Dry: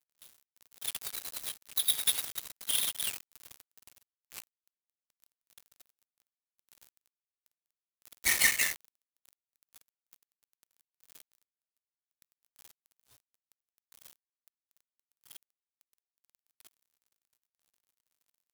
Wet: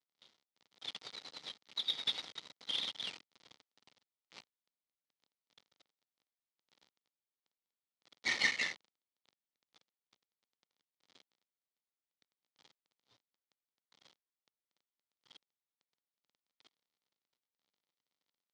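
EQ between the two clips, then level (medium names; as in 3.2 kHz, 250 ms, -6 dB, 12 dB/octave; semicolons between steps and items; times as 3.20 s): cabinet simulation 170–4500 Hz, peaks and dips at 370 Hz -3 dB, 660 Hz -4 dB, 1.1 kHz -4 dB, 1.6 kHz -8 dB, 2.6 kHz -7 dB; 0.0 dB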